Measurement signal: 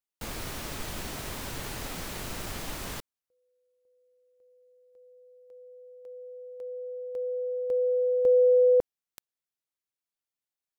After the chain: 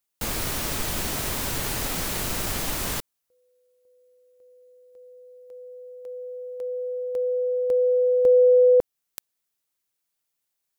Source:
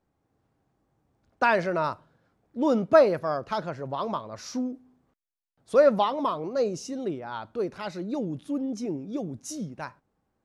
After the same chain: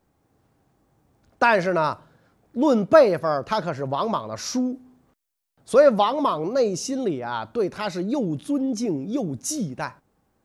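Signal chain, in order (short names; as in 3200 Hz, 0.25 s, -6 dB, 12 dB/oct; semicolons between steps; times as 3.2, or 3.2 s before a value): high shelf 6800 Hz +6.5 dB; in parallel at -2 dB: compressor, threshold -31 dBFS; on the sum: gain +2.5 dB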